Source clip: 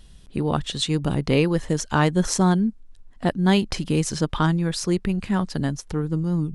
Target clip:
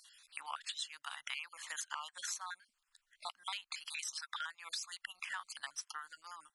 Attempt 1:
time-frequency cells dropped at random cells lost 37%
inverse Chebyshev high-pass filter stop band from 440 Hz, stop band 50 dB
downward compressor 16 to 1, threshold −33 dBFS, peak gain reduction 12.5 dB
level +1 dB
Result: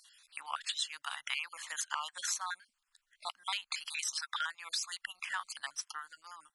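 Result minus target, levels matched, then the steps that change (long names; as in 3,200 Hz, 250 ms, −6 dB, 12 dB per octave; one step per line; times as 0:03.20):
downward compressor: peak gain reduction −6 dB
change: downward compressor 16 to 1, threshold −39.5 dBFS, peak gain reduction 18.5 dB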